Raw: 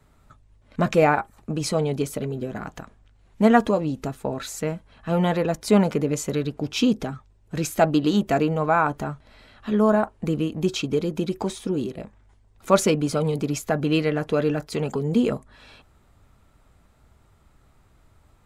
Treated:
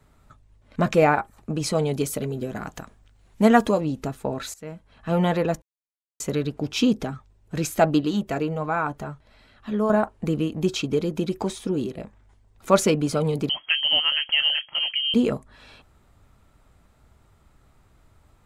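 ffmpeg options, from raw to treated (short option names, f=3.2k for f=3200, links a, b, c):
-filter_complex "[0:a]asettb=1/sr,asplit=3[a][b][c];[a]atrim=end=1.754[d];[b]atrim=start=1.75:end=3.81,asetpts=PTS-STARTPTS,afade=t=in:d=0.004:c=qsin,afade=t=out:st=2.056:d=0.004:c=qsin,highshelf=f=5.1k:g=7.5[e];[c]atrim=start=3.806[f];[d][e]acrossfade=d=0.004:c1=hsin:c2=qsin[g];[g][f]acrossfade=d=0.004:c1=qsin:c2=hsin,asettb=1/sr,asplit=3[h][i][j];[h]atrim=end=8.014[k];[i]atrim=start=8.01:end=9.9,asetpts=PTS-STARTPTS,afade=t=in:d=0.004:c=qsin,afade=t=out:st=1.886:d=0.004:c=qsin,flanger=delay=0.4:depth=2:regen=-66:speed=1.3:shape=triangular[l];[j]atrim=start=9.896[m];[k][l]acrossfade=d=0.004:c1=hsin:c2=qsin[n];[n][m]acrossfade=d=0.004:c1=qsin:c2=hsin,asettb=1/sr,asplit=3[o][p][q];[o]atrim=end=13.494[r];[p]atrim=start=13.49:end=15.14,asetpts=PTS-STARTPTS,afade=t=in:d=0.004:c=qsin,afade=t=out:st=1.646:d=0.004:c=qsin,lowpass=f=2.8k:t=q:w=0.5098,lowpass=f=2.8k:t=q:w=0.6013,lowpass=f=2.8k:t=q:w=0.9,lowpass=f=2.8k:t=q:w=2.563,afreqshift=-3300[s];[q]atrim=start=15.136[t];[r][s]acrossfade=d=0.004:c1=hsin:c2=qsin[u];[u][t]acrossfade=d=0.004:c1=qsin:c2=hsin,asplit=4[v][w][x][y];[v]atrim=end=4.54,asetpts=PTS-STARTPTS,afade=t=out:st=4.536:d=0.004:c=hsin:silence=0.0891251[z];[w]atrim=start=4.54:end=5.62,asetpts=PTS-STARTPTS,afade=t=in:d=0.55:silence=0.0891251,afade=t=out:st=1.076:d=0.004:c=hsin[aa];[x]atrim=start=5.62:end=6.2,asetpts=PTS-STARTPTS,volume=0[ab];[y]atrim=start=6.2,asetpts=PTS-STARTPTS,afade=t=in:d=0.004:c=hsin[ac];[z][aa][ab][ac]concat=n=4:v=0:a=1"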